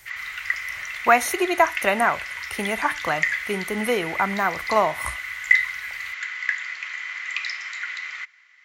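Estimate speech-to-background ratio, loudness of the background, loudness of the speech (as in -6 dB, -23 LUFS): 3.5 dB, -27.0 LUFS, -23.5 LUFS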